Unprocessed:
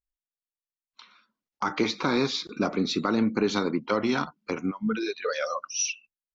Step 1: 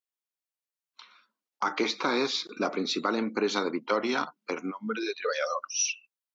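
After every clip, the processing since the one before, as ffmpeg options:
-af "highpass=330"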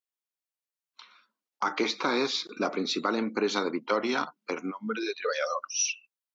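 -af anull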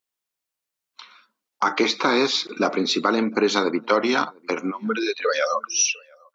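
-filter_complex "[0:a]asplit=2[s0][s1];[s1]adelay=699.7,volume=0.0398,highshelf=f=4000:g=-15.7[s2];[s0][s2]amix=inputs=2:normalize=0,volume=2.37"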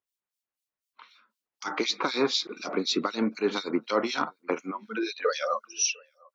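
-filter_complex "[0:a]acrossover=split=2400[s0][s1];[s0]aeval=exprs='val(0)*(1-1/2+1/2*cos(2*PI*4*n/s))':c=same[s2];[s1]aeval=exprs='val(0)*(1-1/2-1/2*cos(2*PI*4*n/s))':c=same[s3];[s2][s3]amix=inputs=2:normalize=0,volume=0.794"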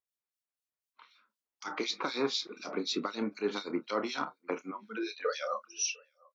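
-filter_complex "[0:a]asplit=2[s0][s1];[s1]adelay=29,volume=0.237[s2];[s0][s2]amix=inputs=2:normalize=0,volume=0.473"

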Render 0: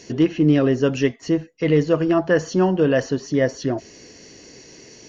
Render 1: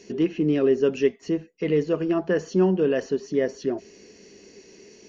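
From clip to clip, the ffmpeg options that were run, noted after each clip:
-af "equalizer=f=125:t=o:w=0.33:g=-10,equalizer=f=200:t=o:w=0.33:g=10,equalizer=f=400:t=o:w=0.33:g=11,equalizer=f=2500:t=o:w=0.33:g=5,volume=0.376"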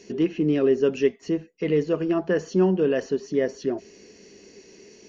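-af anull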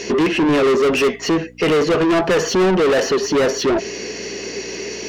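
-filter_complex "[0:a]aeval=exprs='val(0)+0.002*(sin(2*PI*60*n/s)+sin(2*PI*2*60*n/s)/2+sin(2*PI*3*60*n/s)/3+sin(2*PI*4*60*n/s)/4+sin(2*PI*5*60*n/s)/5)':c=same,asplit=2[s0][s1];[s1]highpass=f=720:p=1,volume=44.7,asoftclip=type=tanh:threshold=0.376[s2];[s0][s2]amix=inputs=2:normalize=0,lowpass=f=3900:p=1,volume=0.501"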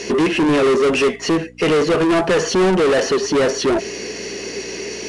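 -ar 22050 -c:a adpcm_ima_wav

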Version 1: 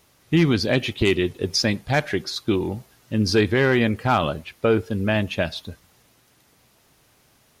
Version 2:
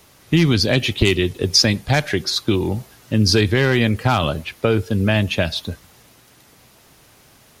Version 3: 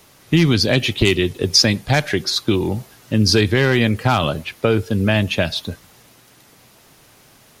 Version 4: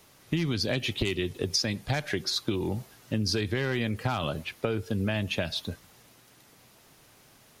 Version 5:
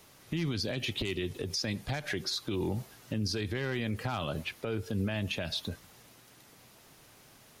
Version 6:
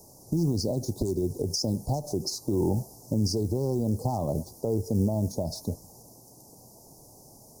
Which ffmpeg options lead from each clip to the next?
-filter_complex "[0:a]acrossover=split=130|3000[s0][s1][s2];[s1]acompressor=threshold=0.0316:ratio=2[s3];[s0][s3][s2]amix=inputs=3:normalize=0,volume=2.66"
-af "equalizer=f=67:t=o:w=0.53:g=-8,volume=1.12"
-af "acompressor=threshold=0.141:ratio=5,volume=0.422"
-af "alimiter=limit=0.0668:level=0:latency=1:release=73"
-af "acrusher=bits=6:mode=log:mix=0:aa=0.000001,asuperstop=centerf=2200:order=12:qfactor=0.52,volume=2.24"

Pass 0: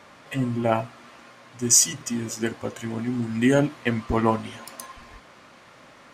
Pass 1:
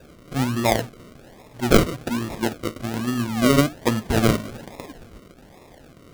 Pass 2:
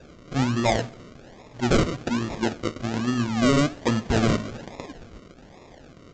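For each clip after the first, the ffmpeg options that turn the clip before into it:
-af "acrusher=samples=41:mix=1:aa=0.000001:lfo=1:lforange=24.6:lforate=1.2,volume=1.33"
-af "aresample=16000,asoftclip=type=hard:threshold=0.178,aresample=44100,aecho=1:1:66|132|198|264:0.0631|0.0372|0.022|0.013"

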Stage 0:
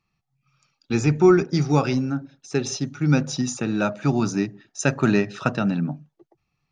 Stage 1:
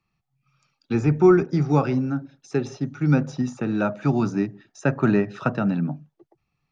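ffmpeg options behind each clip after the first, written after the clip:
-filter_complex "[0:a]highshelf=f=4900:g=-6.5,acrossover=split=110|800|2100[s0][s1][s2][s3];[s3]acompressor=threshold=0.00501:ratio=6[s4];[s0][s1][s2][s4]amix=inputs=4:normalize=0"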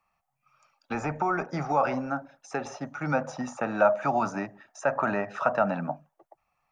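-af "equalizer=f=125:t=o:w=1:g=-10,equalizer=f=1000:t=o:w=1:g=4,equalizer=f=4000:t=o:w=1:g=-10,alimiter=limit=0.158:level=0:latency=1:release=84,lowshelf=f=480:t=q:w=3:g=-7.5,volume=1.5"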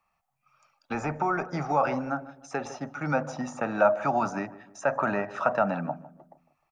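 -filter_complex "[0:a]asplit=2[s0][s1];[s1]adelay=153,lowpass=f=1100:p=1,volume=0.168,asplit=2[s2][s3];[s3]adelay=153,lowpass=f=1100:p=1,volume=0.45,asplit=2[s4][s5];[s5]adelay=153,lowpass=f=1100:p=1,volume=0.45,asplit=2[s6][s7];[s7]adelay=153,lowpass=f=1100:p=1,volume=0.45[s8];[s0][s2][s4][s6][s8]amix=inputs=5:normalize=0"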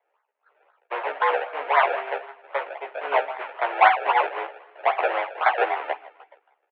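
-filter_complex "[0:a]acrusher=samples=32:mix=1:aa=0.000001:lfo=1:lforange=32:lforate=3.8,asplit=2[s0][s1];[s1]adelay=14,volume=0.708[s2];[s0][s2]amix=inputs=2:normalize=0,highpass=f=380:t=q:w=0.5412,highpass=f=380:t=q:w=1.307,lowpass=f=2600:t=q:w=0.5176,lowpass=f=2600:t=q:w=0.7071,lowpass=f=2600:t=q:w=1.932,afreqshift=130,volume=1.78"

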